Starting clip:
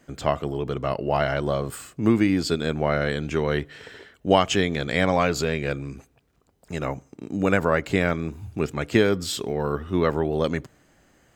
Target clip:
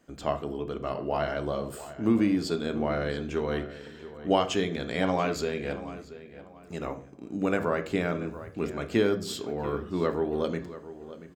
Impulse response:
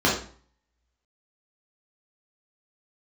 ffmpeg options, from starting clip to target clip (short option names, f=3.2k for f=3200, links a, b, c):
-filter_complex "[0:a]asplit=2[a][b];[b]adelay=684,lowpass=f=3.3k:p=1,volume=-14.5dB,asplit=2[c][d];[d]adelay=684,lowpass=f=3.3k:p=1,volume=0.31,asplit=2[e][f];[f]adelay=684,lowpass=f=3.3k:p=1,volume=0.31[g];[a][c][e][g]amix=inputs=4:normalize=0,asplit=2[h][i];[1:a]atrim=start_sample=2205[j];[i][j]afir=irnorm=-1:irlink=0,volume=-24dB[k];[h][k]amix=inputs=2:normalize=0,volume=-8dB"